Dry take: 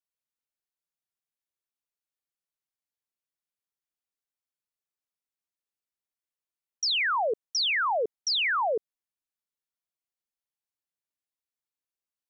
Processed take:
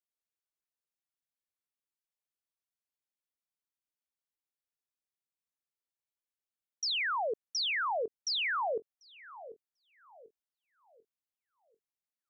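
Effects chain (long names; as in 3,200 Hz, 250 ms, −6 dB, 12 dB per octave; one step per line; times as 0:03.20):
feedback echo with a low-pass in the loop 742 ms, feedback 44%, low-pass 920 Hz, level −13.5 dB
level −6 dB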